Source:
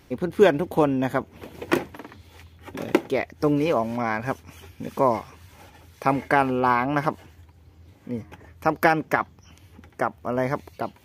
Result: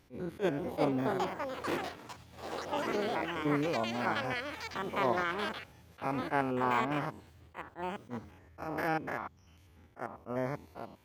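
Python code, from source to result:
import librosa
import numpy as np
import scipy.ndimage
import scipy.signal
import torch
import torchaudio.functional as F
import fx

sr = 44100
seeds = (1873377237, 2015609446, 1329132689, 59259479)

y = fx.spec_steps(x, sr, hold_ms=100)
y = fx.echo_pitch(y, sr, ms=500, semitones=6, count=3, db_per_echo=-3.0)
y = fx.attack_slew(y, sr, db_per_s=330.0)
y = y * librosa.db_to_amplitude(-9.0)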